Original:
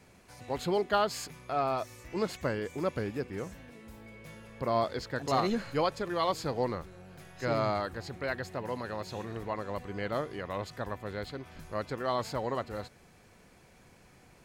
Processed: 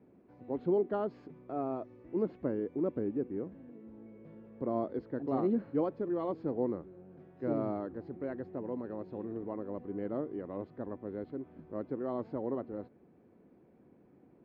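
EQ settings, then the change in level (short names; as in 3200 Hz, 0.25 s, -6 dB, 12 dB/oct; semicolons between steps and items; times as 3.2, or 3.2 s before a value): band-pass 300 Hz, Q 2.1; air absorption 220 m; +5.5 dB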